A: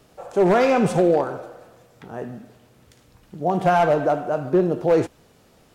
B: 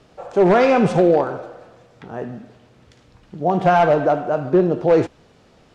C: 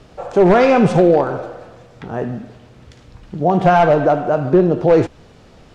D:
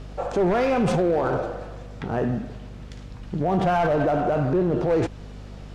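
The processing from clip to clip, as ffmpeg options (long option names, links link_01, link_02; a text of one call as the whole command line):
ffmpeg -i in.wav -af "lowpass=5400,volume=3dB" out.wav
ffmpeg -i in.wav -filter_complex "[0:a]lowshelf=frequency=89:gain=9.5,asplit=2[link_01][link_02];[link_02]acompressor=threshold=-21dB:ratio=6,volume=-1dB[link_03];[link_01][link_03]amix=inputs=2:normalize=0" out.wav
ffmpeg -i in.wav -af "alimiter=limit=-14.5dB:level=0:latency=1:release=13,aeval=exprs='val(0)+0.0126*(sin(2*PI*50*n/s)+sin(2*PI*2*50*n/s)/2+sin(2*PI*3*50*n/s)/3+sin(2*PI*4*50*n/s)/4+sin(2*PI*5*50*n/s)/5)':channel_layout=same,asoftclip=type=hard:threshold=-16dB" out.wav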